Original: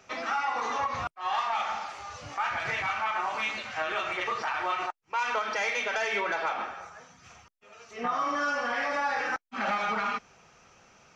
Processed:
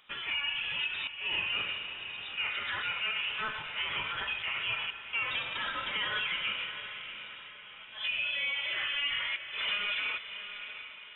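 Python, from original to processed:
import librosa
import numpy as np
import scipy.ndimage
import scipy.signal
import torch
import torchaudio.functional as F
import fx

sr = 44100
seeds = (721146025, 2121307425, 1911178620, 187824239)

y = fx.lower_of_two(x, sr, delay_ms=2.9, at=(5.31, 5.92))
y = fx.echo_diffused(y, sr, ms=678, feedback_pct=45, wet_db=-10)
y = fx.freq_invert(y, sr, carrier_hz=3700)
y = y * librosa.db_to_amplitude(-4.0)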